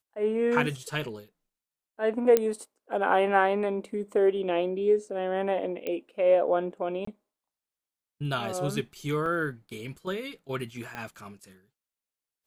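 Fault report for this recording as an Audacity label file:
2.370000	2.370000	pop -9 dBFS
5.870000	5.870000	pop -19 dBFS
7.050000	7.070000	dropout 24 ms
9.260000	9.260000	dropout 2.1 ms
10.950000	10.950000	pop -22 dBFS

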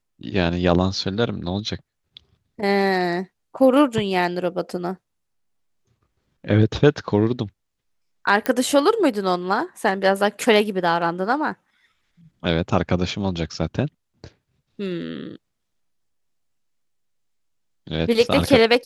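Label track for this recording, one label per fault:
8.460000	8.460000	pop -8 dBFS

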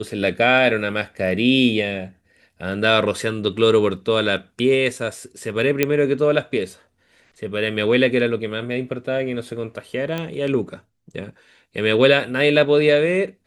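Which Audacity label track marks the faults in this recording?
5.830000	5.830000	pop -3 dBFS
10.180000	10.180000	pop -13 dBFS

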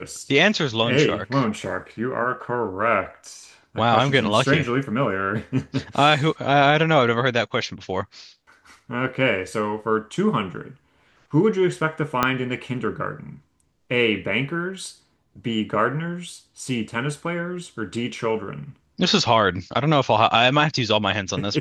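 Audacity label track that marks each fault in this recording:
12.230000	12.230000	pop -4 dBFS

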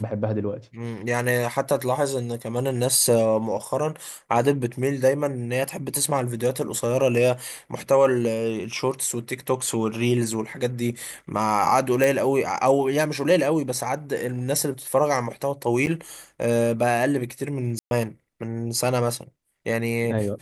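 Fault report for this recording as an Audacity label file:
12.040000	12.040000	pop
15.860000	15.870000	dropout 8.9 ms
17.790000	17.910000	dropout 121 ms

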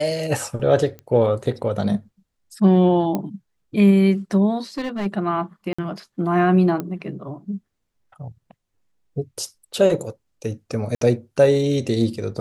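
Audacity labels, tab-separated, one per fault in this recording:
0.990000	0.990000	pop -23 dBFS
3.150000	3.150000	pop -11 dBFS
4.610000	5.070000	clipped -21.5 dBFS
5.730000	5.790000	dropout 55 ms
6.800000	6.800000	pop -14 dBFS
10.950000	11.010000	dropout 63 ms

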